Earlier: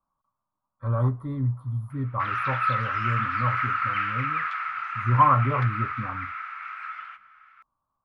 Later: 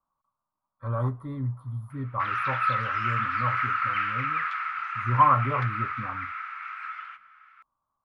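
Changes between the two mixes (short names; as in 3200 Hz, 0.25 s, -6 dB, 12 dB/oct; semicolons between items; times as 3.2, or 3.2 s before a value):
background: add bell 620 Hz -6.5 dB 0.37 oct; master: add low shelf 390 Hz -5 dB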